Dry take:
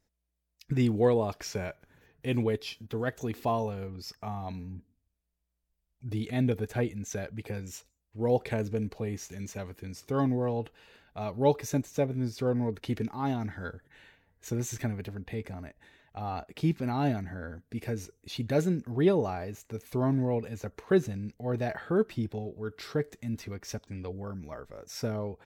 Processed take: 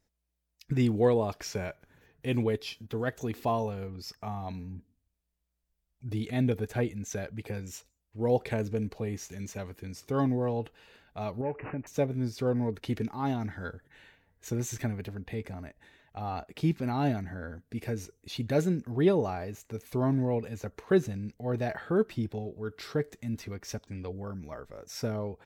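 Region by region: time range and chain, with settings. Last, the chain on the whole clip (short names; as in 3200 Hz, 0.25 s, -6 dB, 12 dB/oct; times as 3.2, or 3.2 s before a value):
11.41–11.87 compressor 2:1, threshold -36 dBFS + careless resampling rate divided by 8×, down none, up filtered
whole clip: dry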